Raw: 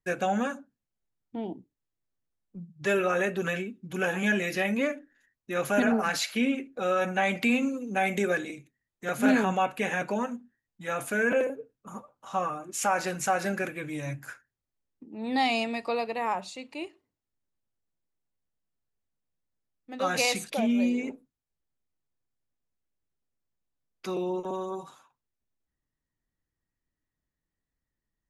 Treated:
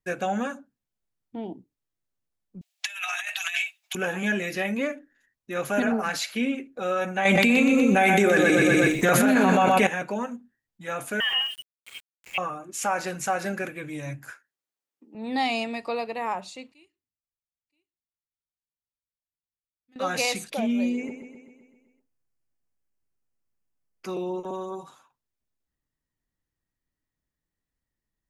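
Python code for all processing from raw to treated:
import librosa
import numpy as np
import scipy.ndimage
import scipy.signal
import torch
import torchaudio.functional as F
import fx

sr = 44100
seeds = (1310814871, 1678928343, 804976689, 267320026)

y = fx.chain(x, sr, fx.high_shelf_res(hz=1800.0, db=11.0, q=1.5),
    fx.over_compress(threshold_db=-27.0, ratio=-0.5),
    fx.brickwall_highpass(low_hz=620.0), at=(2.61, 3.95))
y = fx.chain(y, sr, fx.echo_feedback(ms=123, feedback_pct=37, wet_db=-7),
    fx.env_flatten(amount_pct=100), at=(7.25, 9.87))
y = fx.chain(y, sr, fx.highpass(hz=150.0, slope=6),
    fx.freq_invert(carrier_hz=3400),
    fx.sample_gate(floor_db=-41.0), at=(11.2, 12.38))
y = fx.chain(y, sr, fx.highpass(hz=190.0, slope=12),
    fx.low_shelf(hz=280.0, db=-11.5),
    fx.doubler(ms=13.0, db=-8.0), at=(14.31, 15.15))
y = fx.chain(y, sr, fx.tone_stack(knobs='6-0-2'),
    fx.echo_single(ms=975, db=-20.0), at=(16.72, 19.96))
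y = fx.chain(y, sr, fx.peak_eq(hz=3700.0, db=-13.0, octaves=0.25),
    fx.echo_feedback(ms=129, feedback_pct=59, wet_db=-8.5), at=(20.96, 24.09))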